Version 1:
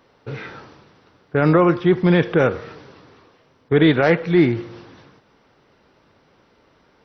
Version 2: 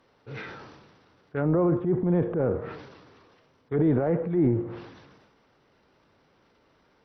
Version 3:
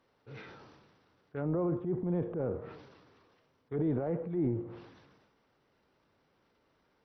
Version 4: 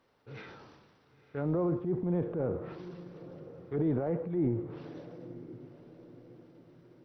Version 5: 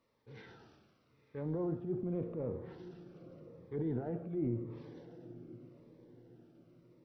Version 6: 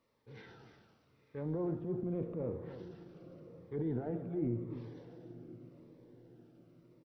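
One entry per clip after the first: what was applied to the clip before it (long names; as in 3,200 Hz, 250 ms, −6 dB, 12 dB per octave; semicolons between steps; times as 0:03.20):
transient designer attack −6 dB, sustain +8 dB; treble cut that deepens with the level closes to 700 Hz, closed at −15.5 dBFS; level −7 dB
dynamic equaliser 1,700 Hz, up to −4 dB, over −51 dBFS, Q 1.7; level −8.5 dB
feedback delay with all-pass diffusion 993 ms, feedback 42%, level −15 dB; level +1.5 dB
convolution reverb RT60 1.0 s, pre-delay 4 ms, DRR 13 dB; phaser whose notches keep moving one way falling 0.87 Hz; level −5.5 dB
single-tap delay 298 ms −12 dB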